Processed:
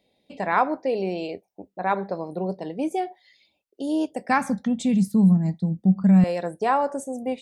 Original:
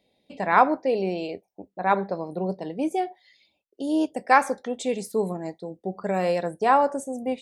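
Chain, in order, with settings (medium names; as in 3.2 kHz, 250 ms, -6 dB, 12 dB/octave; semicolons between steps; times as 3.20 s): 4.29–6.24 s: resonant low shelf 280 Hz +13.5 dB, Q 3; in parallel at +2 dB: compression, threshold -22 dBFS, peak gain reduction 13 dB; on the sum: trim -6.5 dB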